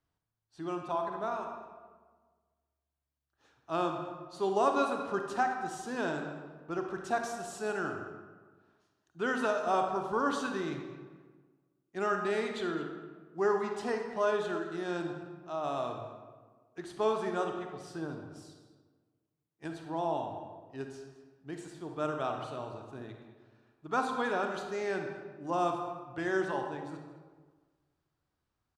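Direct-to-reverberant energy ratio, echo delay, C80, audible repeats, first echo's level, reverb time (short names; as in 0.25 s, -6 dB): 3.5 dB, 0.213 s, 6.5 dB, 1, -17.5 dB, 1.5 s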